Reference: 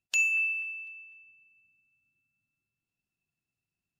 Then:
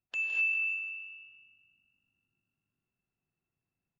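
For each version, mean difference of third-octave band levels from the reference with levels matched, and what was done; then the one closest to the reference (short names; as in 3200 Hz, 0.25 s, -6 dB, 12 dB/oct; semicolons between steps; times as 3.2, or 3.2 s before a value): 3.0 dB: LPF 1700 Hz 12 dB/oct; frequency-shifting echo 0.162 s, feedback 41%, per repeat +49 Hz, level -10.5 dB; non-linear reverb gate 0.28 s rising, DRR -1 dB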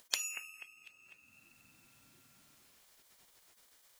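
10.0 dB: tone controls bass -12 dB, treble -1 dB; spectral gate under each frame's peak -20 dB weak; upward compressor, threshold -57 dBFS; gain +9.5 dB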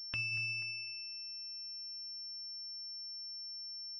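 6.5 dB: compressor 4:1, threshold -31 dBFS, peak gain reduction 8 dB; air absorption 320 m; pulse-width modulation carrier 5400 Hz; gain +5 dB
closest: first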